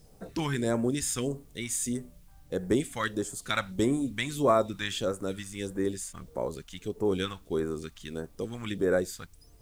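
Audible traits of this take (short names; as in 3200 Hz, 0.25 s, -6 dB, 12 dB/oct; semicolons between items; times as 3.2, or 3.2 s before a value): phasing stages 2, 1.6 Hz, lowest notch 390–3300 Hz; a quantiser's noise floor 12-bit, dither triangular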